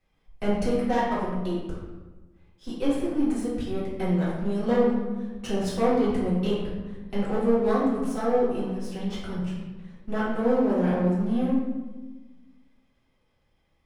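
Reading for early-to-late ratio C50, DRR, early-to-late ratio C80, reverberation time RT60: 0.5 dB, −9.5 dB, 3.5 dB, 1.2 s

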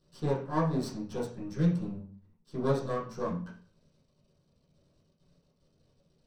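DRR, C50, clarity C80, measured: −11.0 dB, 7.0 dB, 11.5 dB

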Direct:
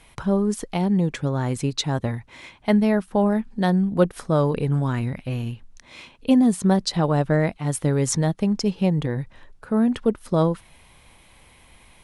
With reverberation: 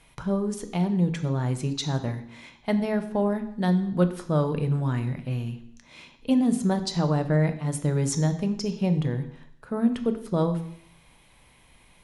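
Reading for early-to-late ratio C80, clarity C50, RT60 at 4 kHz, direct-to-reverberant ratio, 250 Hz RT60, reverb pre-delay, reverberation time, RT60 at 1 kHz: 14.5 dB, 12.0 dB, 0.70 s, 8.0 dB, 0.65 s, 3 ms, 0.70 s, 0.70 s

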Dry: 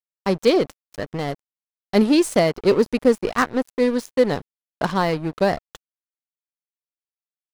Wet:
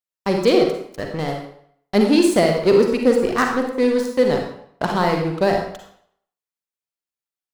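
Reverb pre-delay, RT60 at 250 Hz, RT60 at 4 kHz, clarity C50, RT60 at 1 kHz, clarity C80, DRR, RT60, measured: 40 ms, 0.60 s, 0.55 s, 4.0 dB, 0.70 s, 7.0 dB, 2.0 dB, 0.65 s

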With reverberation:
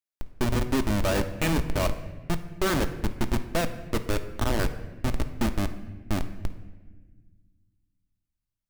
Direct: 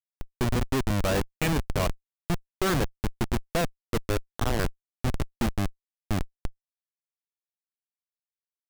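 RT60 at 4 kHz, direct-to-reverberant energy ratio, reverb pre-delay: 0.95 s, 8.0 dB, 3 ms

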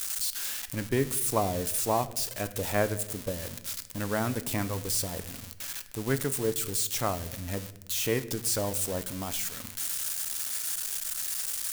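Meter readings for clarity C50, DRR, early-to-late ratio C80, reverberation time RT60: 15.5 dB, 11.5 dB, 17.5 dB, 0.90 s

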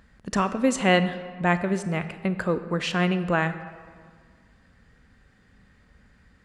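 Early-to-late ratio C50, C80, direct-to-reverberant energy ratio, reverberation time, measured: 12.0 dB, 13.0 dB, 11.0 dB, 1.9 s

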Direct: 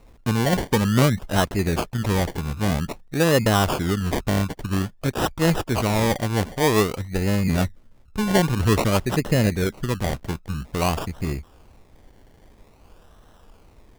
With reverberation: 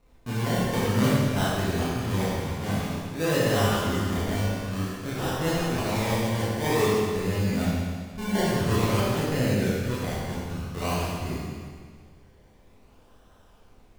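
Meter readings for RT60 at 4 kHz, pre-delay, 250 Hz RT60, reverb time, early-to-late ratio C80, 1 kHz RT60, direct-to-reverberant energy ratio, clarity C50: 1.7 s, 23 ms, 1.8 s, 1.8 s, −0.5 dB, 1.8 s, −9.0 dB, −3.0 dB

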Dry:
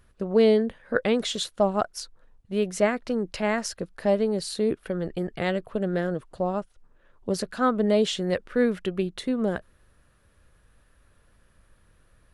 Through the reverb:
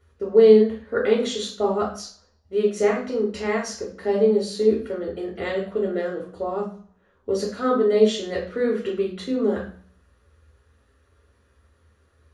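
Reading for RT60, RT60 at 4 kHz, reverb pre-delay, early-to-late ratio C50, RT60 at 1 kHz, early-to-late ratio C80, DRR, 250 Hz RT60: 0.50 s, 0.45 s, 3 ms, 6.5 dB, 0.50 s, 12.0 dB, −4.5 dB, 0.55 s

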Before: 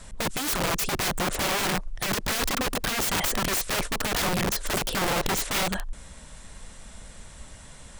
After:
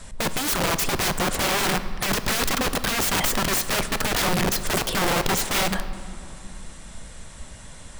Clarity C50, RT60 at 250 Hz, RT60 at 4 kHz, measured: 12.5 dB, 3.9 s, 1.6 s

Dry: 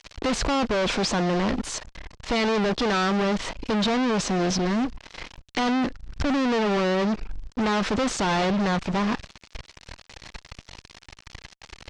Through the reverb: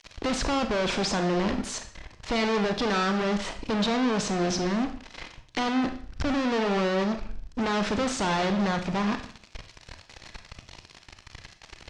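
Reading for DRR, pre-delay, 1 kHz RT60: 7.5 dB, 25 ms, 0.50 s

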